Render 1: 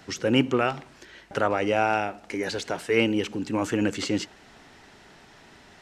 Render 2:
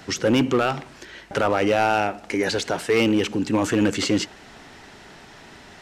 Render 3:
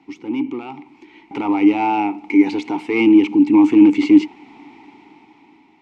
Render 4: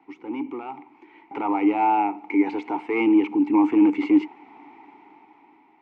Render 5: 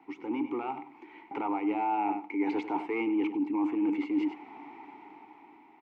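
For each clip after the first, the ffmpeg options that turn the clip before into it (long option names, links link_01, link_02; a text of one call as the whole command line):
ffmpeg -i in.wav -filter_complex "[0:a]asplit=2[link_01][link_02];[link_02]alimiter=limit=-18dB:level=0:latency=1:release=15,volume=1dB[link_03];[link_01][link_03]amix=inputs=2:normalize=0,asoftclip=type=hard:threshold=-13dB" out.wav
ffmpeg -i in.wav -filter_complex "[0:a]dynaudnorm=framelen=330:gausssize=7:maxgain=14dB,asplit=3[link_01][link_02][link_03];[link_01]bandpass=frequency=300:width_type=q:width=8,volume=0dB[link_04];[link_02]bandpass=frequency=870:width_type=q:width=8,volume=-6dB[link_05];[link_03]bandpass=frequency=2240:width_type=q:width=8,volume=-9dB[link_06];[link_04][link_05][link_06]amix=inputs=3:normalize=0,volume=4dB" out.wav
ffmpeg -i in.wav -filter_complex "[0:a]acrossover=split=390 2100:gain=0.224 1 0.112[link_01][link_02][link_03];[link_01][link_02][link_03]amix=inputs=3:normalize=0" out.wav
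ffmpeg -i in.wav -af "aecho=1:1:98:0.224,areverse,acompressor=threshold=-27dB:ratio=6,areverse" out.wav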